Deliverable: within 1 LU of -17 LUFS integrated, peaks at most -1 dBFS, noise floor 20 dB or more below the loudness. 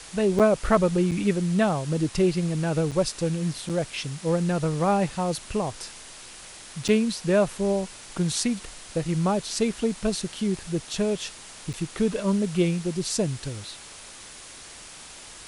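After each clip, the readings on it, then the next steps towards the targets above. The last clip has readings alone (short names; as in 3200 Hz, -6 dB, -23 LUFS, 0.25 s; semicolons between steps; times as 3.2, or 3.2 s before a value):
dropouts 6; longest dropout 7.1 ms; noise floor -44 dBFS; noise floor target -46 dBFS; loudness -25.5 LUFS; peak -7.5 dBFS; loudness target -17.0 LUFS
-> interpolate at 0.39/1.11/2.91/3.69/6.88/11.73, 7.1 ms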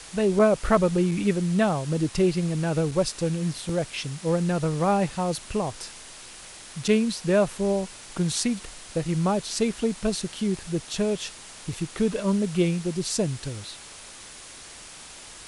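dropouts 0; noise floor -44 dBFS; noise floor target -46 dBFS
-> denoiser 6 dB, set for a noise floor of -44 dBFS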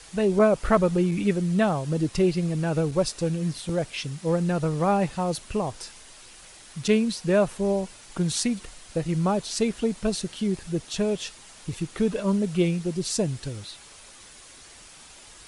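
noise floor -48 dBFS; loudness -25.5 LUFS; peak -7.5 dBFS; loudness target -17.0 LUFS
-> gain +8.5 dB; limiter -1 dBFS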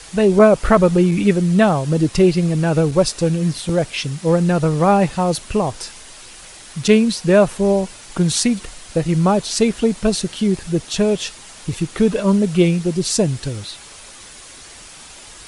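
loudness -17.0 LUFS; peak -1.0 dBFS; noise floor -40 dBFS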